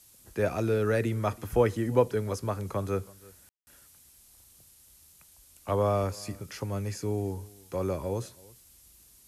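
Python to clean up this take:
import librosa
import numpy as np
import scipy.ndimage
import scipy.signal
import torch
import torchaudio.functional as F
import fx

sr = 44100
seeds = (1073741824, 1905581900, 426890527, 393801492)

y = fx.fix_ambience(x, sr, seeds[0], print_start_s=4.69, print_end_s=5.19, start_s=3.49, end_s=3.67)
y = fx.noise_reduce(y, sr, print_start_s=4.69, print_end_s=5.19, reduce_db=17.0)
y = fx.fix_echo_inverse(y, sr, delay_ms=327, level_db=-23.5)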